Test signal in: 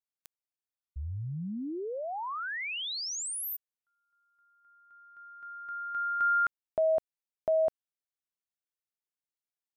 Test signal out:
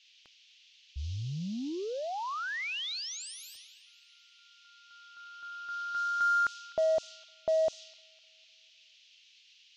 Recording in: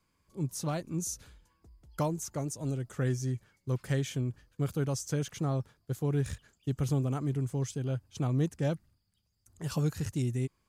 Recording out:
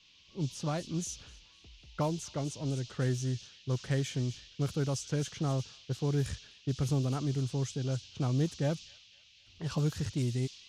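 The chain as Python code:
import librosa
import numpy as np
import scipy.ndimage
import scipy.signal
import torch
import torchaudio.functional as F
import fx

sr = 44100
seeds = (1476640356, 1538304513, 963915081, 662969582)

p1 = fx.dmg_noise_band(x, sr, seeds[0], low_hz=2700.0, high_hz=6600.0, level_db=-51.0)
p2 = 10.0 ** (-35.0 / 20.0) * np.tanh(p1 / 10.0 ** (-35.0 / 20.0))
p3 = p1 + F.gain(torch.from_numpy(p2), -11.0).numpy()
p4 = fx.echo_wet_highpass(p3, sr, ms=253, feedback_pct=48, hz=2800.0, wet_db=-11.0)
p5 = fx.env_lowpass(p4, sr, base_hz=1800.0, full_db=-24.5)
y = F.gain(torch.from_numpy(p5), -1.5).numpy()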